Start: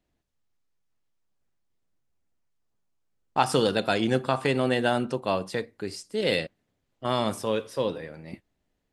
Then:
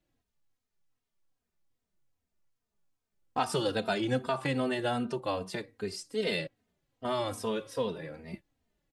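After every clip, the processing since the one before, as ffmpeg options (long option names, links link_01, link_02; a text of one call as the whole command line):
ffmpeg -i in.wav -filter_complex "[0:a]acompressor=threshold=-31dB:ratio=1.5,asplit=2[link_01][link_02];[link_02]adelay=3,afreqshift=-2.5[link_03];[link_01][link_03]amix=inputs=2:normalize=1,volume=1.5dB" out.wav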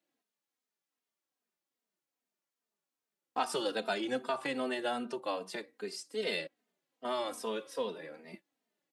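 ffmpeg -i in.wav -af "highpass=frequency=200:width=0.5412,highpass=frequency=200:width=1.3066,lowshelf=frequency=260:gain=-6.5,volume=-2dB" out.wav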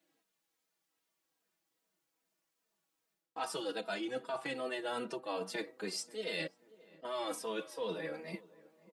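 ffmpeg -i in.wav -filter_complex "[0:a]aecho=1:1:6.2:0.64,areverse,acompressor=threshold=-40dB:ratio=10,areverse,asplit=2[link_01][link_02];[link_02]adelay=537,lowpass=frequency=1200:poles=1,volume=-20.5dB,asplit=2[link_03][link_04];[link_04]adelay=537,lowpass=frequency=1200:poles=1,volume=0.5,asplit=2[link_05][link_06];[link_06]adelay=537,lowpass=frequency=1200:poles=1,volume=0.5,asplit=2[link_07][link_08];[link_08]adelay=537,lowpass=frequency=1200:poles=1,volume=0.5[link_09];[link_01][link_03][link_05][link_07][link_09]amix=inputs=5:normalize=0,volume=5dB" out.wav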